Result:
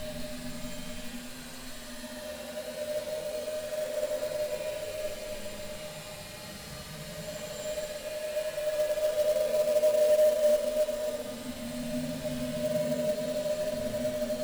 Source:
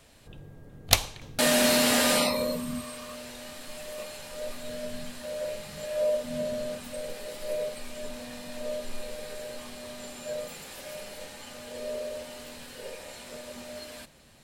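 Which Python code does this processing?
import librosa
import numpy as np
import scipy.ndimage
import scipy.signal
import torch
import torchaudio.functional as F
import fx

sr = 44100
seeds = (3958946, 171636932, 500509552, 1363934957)

y = fx.paulstretch(x, sr, seeds[0], factor=9.0, window_s=0.1, from_s=4.98)
y = fx.quant_float(y, sr, bits=2)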